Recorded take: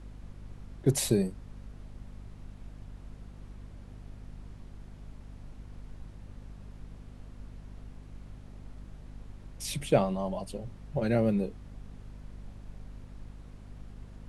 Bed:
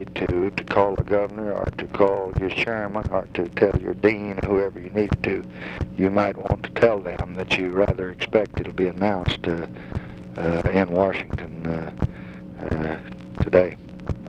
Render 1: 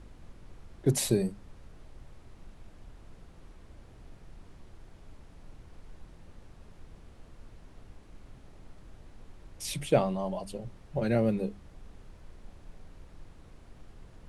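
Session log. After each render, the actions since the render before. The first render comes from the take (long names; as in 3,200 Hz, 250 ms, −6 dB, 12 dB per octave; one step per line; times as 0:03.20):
mains-hum notches 50/100/150/200/250 Hz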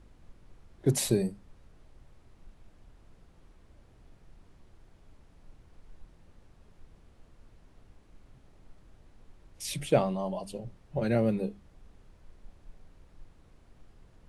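noise reduction from a noise print 6 dB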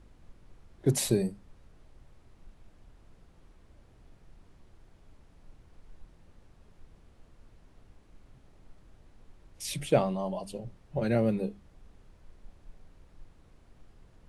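no processing that can be heard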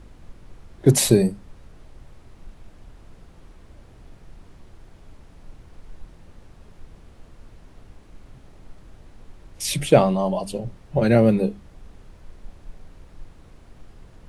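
level +10.5 dB
brickwall limiter −1 dBFS, peak gain reduction 1 dB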